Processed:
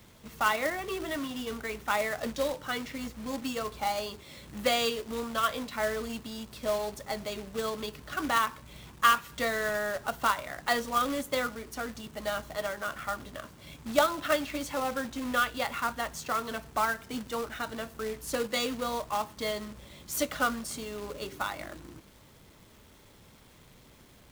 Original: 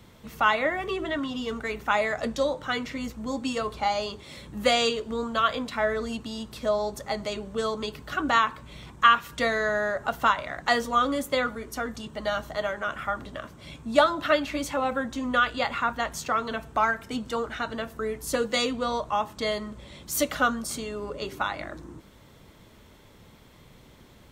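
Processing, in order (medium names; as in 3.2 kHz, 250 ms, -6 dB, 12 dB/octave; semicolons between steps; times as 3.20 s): companded quantiser 4-bit; trim -5 dB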